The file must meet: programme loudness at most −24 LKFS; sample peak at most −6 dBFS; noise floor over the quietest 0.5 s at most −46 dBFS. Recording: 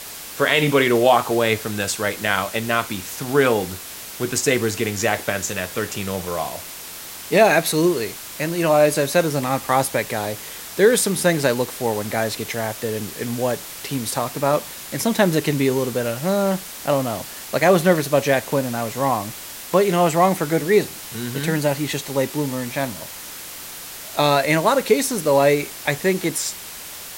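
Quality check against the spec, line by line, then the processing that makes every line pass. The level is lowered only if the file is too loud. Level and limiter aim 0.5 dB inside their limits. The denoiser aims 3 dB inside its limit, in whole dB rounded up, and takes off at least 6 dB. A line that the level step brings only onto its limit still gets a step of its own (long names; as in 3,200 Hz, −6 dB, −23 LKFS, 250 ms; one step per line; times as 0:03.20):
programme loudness −20.5 LKFS: out of spec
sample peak −3.5 dBFS: out of spec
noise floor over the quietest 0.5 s −36 dBFS: out of spec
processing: broadband denoise 9 dB, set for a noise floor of −36 dBFS
level −4 dB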